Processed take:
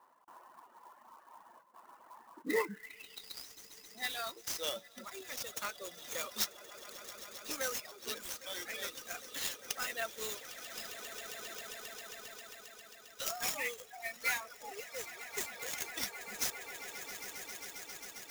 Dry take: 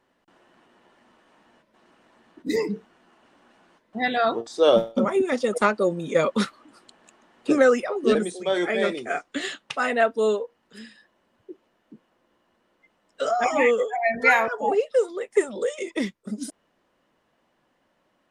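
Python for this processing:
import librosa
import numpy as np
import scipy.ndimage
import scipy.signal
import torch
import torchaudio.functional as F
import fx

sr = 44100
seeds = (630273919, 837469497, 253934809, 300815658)

y = fx.low_shelf(x, sr, hz=230.0, db=6.0)
y = fx.echo_swell(y, sr, ms=134, loudest=8, wet_db=-16.0)
y = fx.rider(y, sr, range_db=5, speed_s=2.0)
y = fx.filter_sweep_bandpass(y, sr, from_hz=1000.0, to_hz=6100.0, start_s=2.41, end_s=3.53, q=5.0)
y = fx.dereverb_blind(y, sr, rt60_s=1.8)
y = fx.clock_jitter(y, sr, seeds[0], jitter_ms=0.026)
y = y * 10.0 ** (10.5 / 20.0)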